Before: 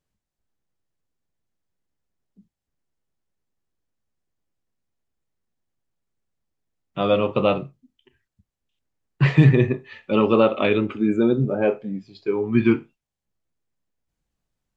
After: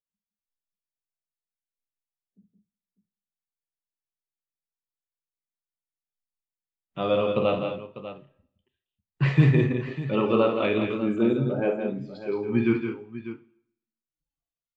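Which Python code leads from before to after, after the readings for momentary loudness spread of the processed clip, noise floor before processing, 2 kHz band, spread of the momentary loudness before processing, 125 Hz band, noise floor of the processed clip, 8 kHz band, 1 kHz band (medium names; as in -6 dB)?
18 LU, under -85 dBFS, -4.0 dB, 12 LU, -4.0 dB, under -85 dBFS, no reading, -4.5 dB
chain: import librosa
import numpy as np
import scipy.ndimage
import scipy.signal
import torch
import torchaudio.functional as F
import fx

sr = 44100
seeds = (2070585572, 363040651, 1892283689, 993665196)

p1 = fx.noise_reduce_blind(x, sr, reduce_db=22)
p2 = p1 + fx.echo_multitap(p1, sr, ms=(52, 168, 201, 598), db=(-8.5, -7.0, -11.0, -13.0), dry=0)
p3 = fx.rev_plate(p2, sr, seeds[0], rt60_s=0.75, hf_ratio=0.95, predelay_ms=0, drr_db=17.0)
y = F.gain(torch.from_numpy(p3), -6.0).numpy()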